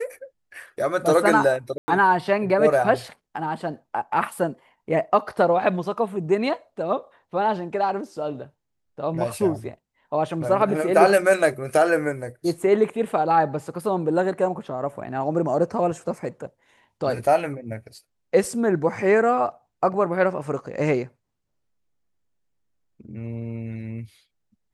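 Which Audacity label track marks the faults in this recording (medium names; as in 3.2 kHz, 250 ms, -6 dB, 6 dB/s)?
1.780000	1.880000	dropout 100 ms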